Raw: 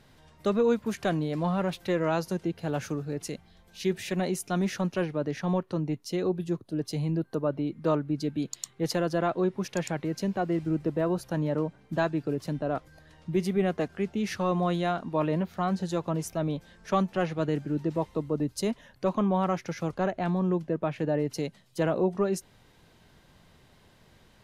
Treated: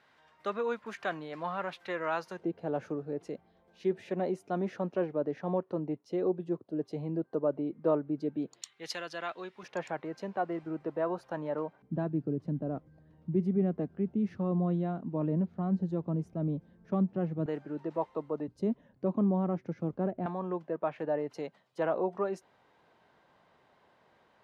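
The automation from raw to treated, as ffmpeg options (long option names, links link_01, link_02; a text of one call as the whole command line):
ffmpeg -i in.wav -af "asetnsamples=nb_out_samples=441:pad=0,asendcmd='2.39 bandpass f 510;8.62 bandpass f 2700;9.63 bandpass f 920;11.82 bandpass f 200;17.46 bandpass f 850;18.48 bandpass f 250;20.26 bandpass f 870',bandpass=frequency=1400:width_type=q:width=0.93:csg=0" out.wav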